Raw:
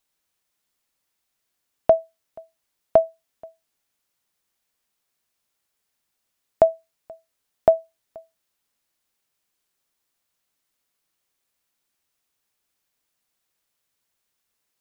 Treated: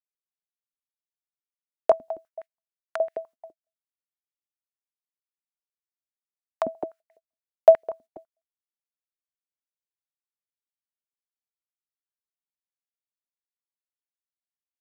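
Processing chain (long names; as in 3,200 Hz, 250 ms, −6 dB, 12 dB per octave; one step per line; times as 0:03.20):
single-tap delay 208 ms −14.5 dB
noise gate −44 dBFS, range −33 dB
high-pass on a step sequencer 12 Hz 250–1,900 Hz
level −7.5 dB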